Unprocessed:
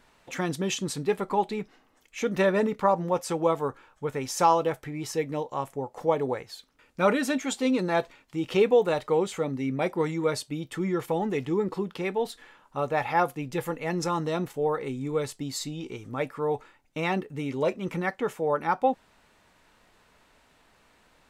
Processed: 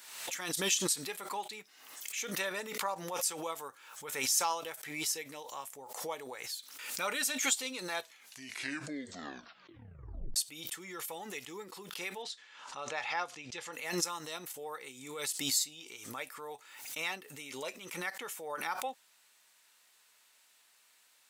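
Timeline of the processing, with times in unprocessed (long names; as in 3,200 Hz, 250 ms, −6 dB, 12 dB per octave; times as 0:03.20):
0:07.99: tape stop 2.37 s
0:12.22–0:13.73: low-pass filter 6,400 Hz 24 dB per octave
whole clip: first difference; background raised ahead of every attack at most 57 dB per second; level +5 dB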